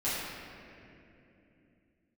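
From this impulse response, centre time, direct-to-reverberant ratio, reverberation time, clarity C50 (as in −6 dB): 152 ms, −13.0 dB, 2.9 s, −3.0 dB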